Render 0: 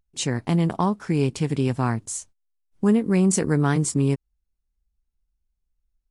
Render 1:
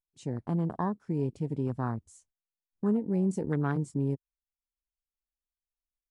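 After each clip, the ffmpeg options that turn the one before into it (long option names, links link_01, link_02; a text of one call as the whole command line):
ffmpeg -i in.wav -af "afwtdn=0.0282,volume=-8.5dB" out.wav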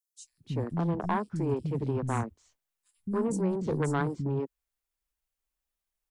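ffmpeg -i in.wav -filter_complex "[0:a]acrossover=split=330|3400[link_01][link_02][link_03];[link_01]alimiter=level_in=7dB:limit=-24dB:level=0:latency=1,volume=-7dB[link_04];[link_04][link_02][link_03]amix=inputs=3:normalize=0,asoftclip=type=tanh:threshold=-27dB,acrossover=split=230|4600[link_05][link_06][link_07];[link_05]adelay=240[link_08];[link_06]adelay=300[link_09];[link_08][link_09][link_07]amix=inputs=3:normalize=0,volume=7.5dB" out.wav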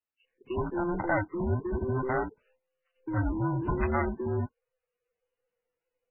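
ffmpeg -i in.wav -filter_complex "[0:a]afftfilt=real='real(if(between(b,1,1008),(2*floor((b-1)/24)+1)*24-b,b),0)':imag='imag(if(between(b,1,1008),(2*floor((b-1)/24)+1)*24-b,b),0)*if(between(b,1,1008),-1,1)':win_size=2048:overlap=0.75,acrossover=split=170|460|5300[link_01][link_02][link_03][link_04];[link_02]asoftclip=type=tanh:threshold=-38.5dB[link_05];[link_01][link_05][link_03][link_04]amix=inputs=4:normalize=0,volume=3.5dB" -ar 16000 -c:a libmp3lame -b:a 8k out.mp3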